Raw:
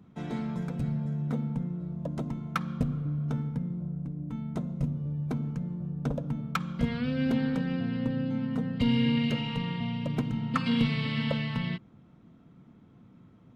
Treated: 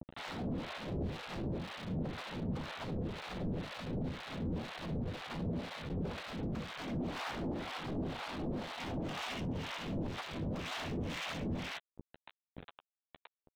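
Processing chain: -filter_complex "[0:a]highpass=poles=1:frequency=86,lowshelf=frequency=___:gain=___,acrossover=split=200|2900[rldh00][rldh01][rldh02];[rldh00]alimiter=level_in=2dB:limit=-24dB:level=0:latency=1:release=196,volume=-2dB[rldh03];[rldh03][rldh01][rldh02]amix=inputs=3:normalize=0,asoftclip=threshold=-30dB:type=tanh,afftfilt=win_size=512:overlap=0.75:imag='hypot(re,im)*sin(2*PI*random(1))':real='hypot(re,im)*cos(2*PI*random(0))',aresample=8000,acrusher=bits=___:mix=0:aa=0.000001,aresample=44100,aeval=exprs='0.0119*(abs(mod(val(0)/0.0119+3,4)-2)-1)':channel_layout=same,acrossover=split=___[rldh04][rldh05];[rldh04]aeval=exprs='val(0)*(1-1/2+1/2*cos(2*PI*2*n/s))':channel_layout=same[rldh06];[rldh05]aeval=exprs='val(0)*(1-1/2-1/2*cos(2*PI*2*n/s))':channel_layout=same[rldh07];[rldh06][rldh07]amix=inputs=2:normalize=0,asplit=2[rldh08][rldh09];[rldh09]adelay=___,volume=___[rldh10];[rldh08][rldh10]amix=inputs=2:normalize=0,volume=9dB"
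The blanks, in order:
470, 6, 7, 690, 12, -13.5dB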